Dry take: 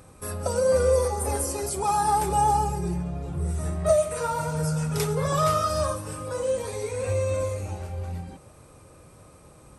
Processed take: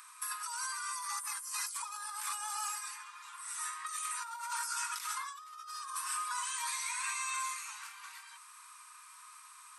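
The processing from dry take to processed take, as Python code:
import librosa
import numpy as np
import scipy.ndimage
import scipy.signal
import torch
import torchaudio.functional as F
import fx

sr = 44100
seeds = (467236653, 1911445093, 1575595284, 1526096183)

y = scipy.signal.sosfilt(scipy.signal.cheby1(8, 1.0, 950.0, 'highpass', fs=sr, output='sos'), x)
y = fx.over_compress(y, sr, threshold_db=-40.0, ratio=-1.0)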